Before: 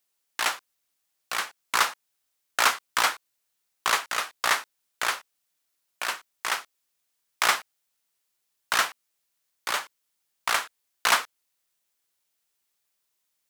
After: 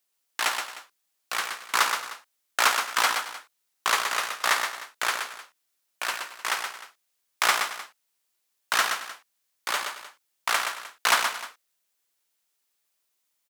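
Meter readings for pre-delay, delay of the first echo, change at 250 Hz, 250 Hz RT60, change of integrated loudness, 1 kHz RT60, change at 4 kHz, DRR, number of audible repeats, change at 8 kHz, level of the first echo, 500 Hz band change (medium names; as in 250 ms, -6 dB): no reverb, 123 ms, -0.5 dB, no reverb, +0.5 dB, no reverb, +1.0 dB, no reverb, 3, +1.0 dB, -6.0 dB, +1.0 dB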